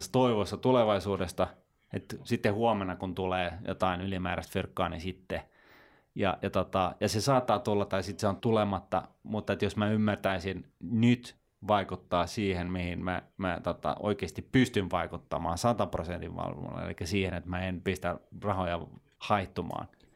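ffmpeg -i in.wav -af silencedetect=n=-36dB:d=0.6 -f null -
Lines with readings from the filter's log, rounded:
silence_start: 5.40
silence_end: 6.16 | silence_duration: 0.76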